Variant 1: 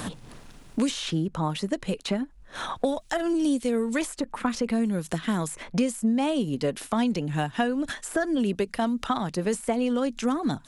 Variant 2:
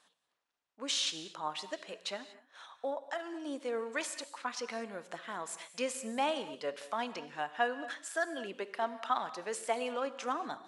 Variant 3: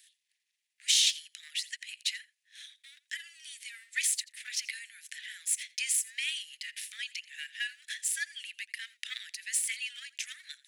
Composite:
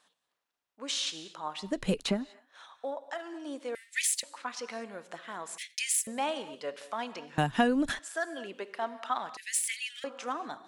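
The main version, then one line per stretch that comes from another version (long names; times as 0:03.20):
2
0:01.71–0:02.19: punch in from 1, crossfade 0.24 s
0:03.75–0:04.23: punch in from 3
0:05.58–0:06.07: punch in from 3
0:07.38–0:07.99: punch in from 1
0:09.37–0:10.04: punch in from 3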